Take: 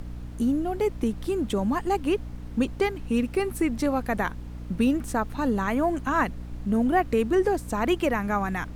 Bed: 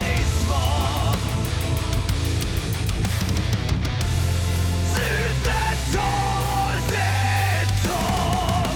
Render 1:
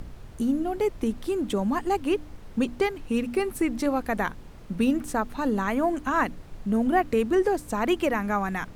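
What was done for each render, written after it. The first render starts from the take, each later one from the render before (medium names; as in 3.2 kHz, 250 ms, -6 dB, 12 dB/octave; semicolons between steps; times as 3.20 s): de-hum 60 Hz, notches 5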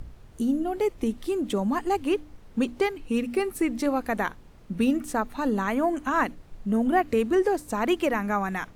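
noise print and reduce 6 dB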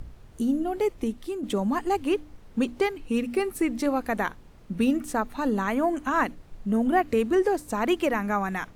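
0.89–1.43 s: fade out, to -6.5 dB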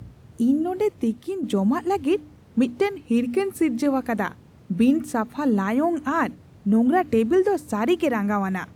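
high-pass 87 Hz 24 dB/octave; bass shelf 260 Hz +10 dB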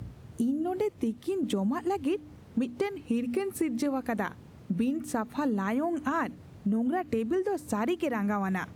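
compression, threshold -26 dBFS, peak gain reduction 12.5 dB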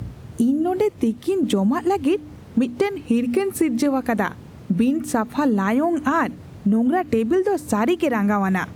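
trim +9.5 dB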